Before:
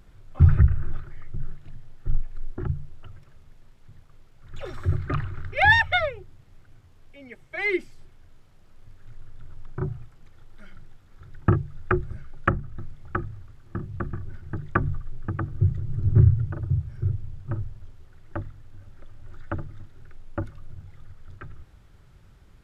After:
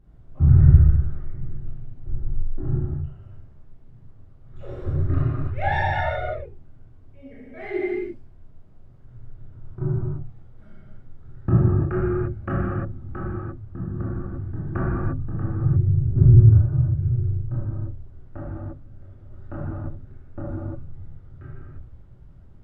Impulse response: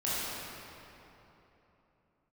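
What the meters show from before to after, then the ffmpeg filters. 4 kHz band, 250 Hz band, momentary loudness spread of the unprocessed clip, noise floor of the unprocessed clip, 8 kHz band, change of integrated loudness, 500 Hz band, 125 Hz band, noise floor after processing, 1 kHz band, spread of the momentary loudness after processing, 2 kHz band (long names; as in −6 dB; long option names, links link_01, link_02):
below −10 dB, +5.5 dB, 22 LU, −53 dBFS, can't be measured, +3.5 dB, +3.5 dB, +6.0 dB, −47 dBFS, −1.5 dB, 21 LU, −9.0 dB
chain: -filter_complex "[0:a]tiltshelf=frequency=1100:gain=9[link_01];[1:a]atrim=start_sample=2205,afade=type=out:start_time=0.41:duration=0.01,atrim=end_sample=18522[link_02];[link_01][link_02]afir=irnorm=-1:irlink=0,volume=-11.5dB"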